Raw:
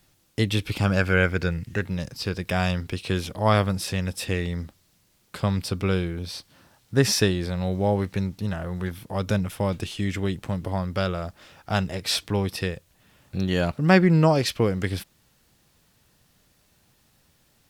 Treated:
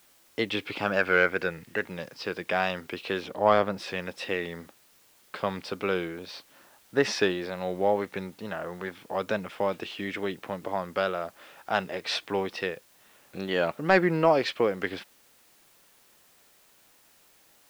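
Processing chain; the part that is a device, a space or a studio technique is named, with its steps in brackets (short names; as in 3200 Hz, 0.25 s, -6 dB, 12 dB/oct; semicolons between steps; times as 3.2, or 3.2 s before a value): tape answering machine (BPF 370–3000 Hz; soft clip -8.5 dBFS, distortion -20 dB; wow and flutter; white noise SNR 31 dB); 3.22–3.78 tilt shelf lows +3 dB; gain +1.5 dB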